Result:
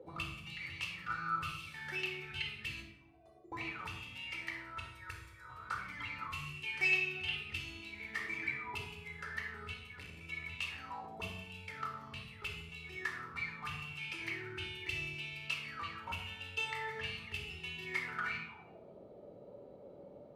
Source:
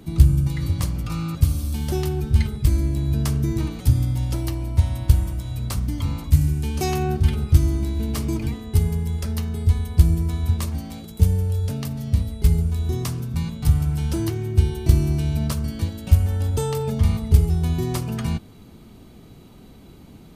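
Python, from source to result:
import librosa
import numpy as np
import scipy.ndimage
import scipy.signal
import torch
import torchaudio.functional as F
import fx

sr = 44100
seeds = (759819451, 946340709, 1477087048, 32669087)

y = fx.stiff_resonator(x, sr, f0_hz=360.0, decay_s=0.37, stiffness=0.008, at=(2.82, 3.52))
y = fx.fixed_phaser(y, sr, hz=760.0, stages=6, at=(4.79, 5.48), fade=0.02)
y = fx.tube_stage(y, sr, drive_db=17.0, bias=0.75, at=(9.74, 10.21))
y = fx.auto_wah(y, sr, base_hz=510.0, top_hz=2700.0, q=15.0, full_db=-18.5, direction='up')
y = fx.room_shoebox(y, sr, seeds[0], volume_m3=2800.0, walls='furnished', distance_m=4.3)
y = y * 10.0 ** (10.5 / 20.0)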